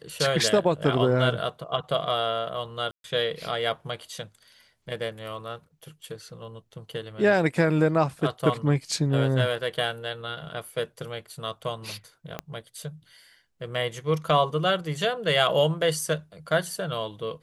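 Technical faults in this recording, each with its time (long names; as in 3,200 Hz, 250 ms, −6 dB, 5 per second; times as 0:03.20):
0:02.91–0:03.04: drop-out 132 ms
0:12.39: click −16 dBFS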